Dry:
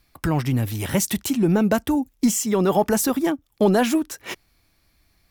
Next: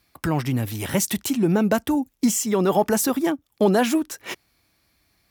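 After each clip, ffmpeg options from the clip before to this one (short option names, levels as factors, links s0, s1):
-af "highpass=43,lowshelf=f=83:g=-8.5"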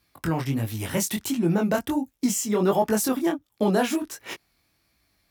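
-af "flanger=delay=17.5:depth=6.9:speed=1.4"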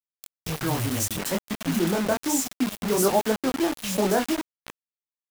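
-filter_complex "[0:a]acrossover=split=170|2400[s0][s1][s2];[s0]adelay=210[s3];[s1]adelay=370[s4];[s3][s4][s2]amix=inputs=3:normalize=0,acrusher=bits=4:mix=0:aa=0.000001"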